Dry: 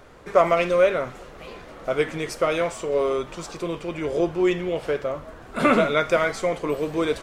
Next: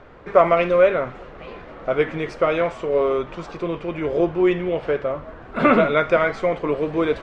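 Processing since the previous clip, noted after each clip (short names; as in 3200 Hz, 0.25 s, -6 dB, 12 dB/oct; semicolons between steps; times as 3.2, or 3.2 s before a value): LPF 2700 Hz 12 dB/oct; gain +3 dB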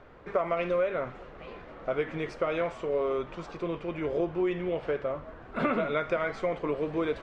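compressor 6:1, threshold -17 dBFS, peak gain reduction 9 dB; gain -7 dB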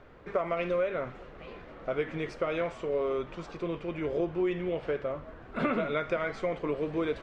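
bell 900 Hz -3 dB 1.6 oct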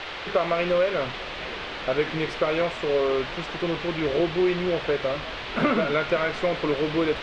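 band noise 350–3500 Hz -42 dBFS; gain +6.5 dB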